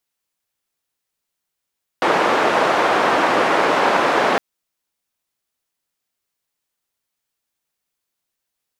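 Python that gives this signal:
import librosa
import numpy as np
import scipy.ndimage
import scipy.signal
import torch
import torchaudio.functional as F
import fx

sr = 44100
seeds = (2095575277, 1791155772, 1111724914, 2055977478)

y = fx.band_noise(sr, seeds[0], length_s=2.36, low_hz=350.0, high_hz=1100.0, level_db=-16.5)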